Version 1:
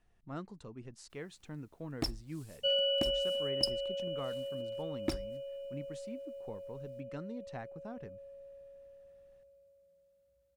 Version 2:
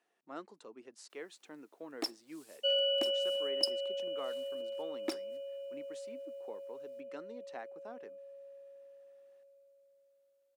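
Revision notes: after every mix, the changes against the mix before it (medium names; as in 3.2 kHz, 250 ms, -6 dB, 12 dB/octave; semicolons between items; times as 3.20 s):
master: add high-pass 310 Hz 24 dB/octave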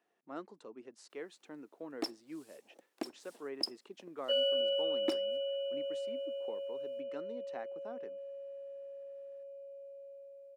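second sound: entry +1.65 s; master: add tilt EQ -1.5 dB/octave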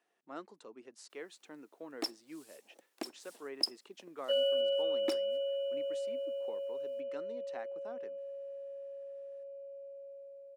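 second sound: add tilt EQ -3.5 dB/octave; master: add tilt EQ +1.5 dB/octave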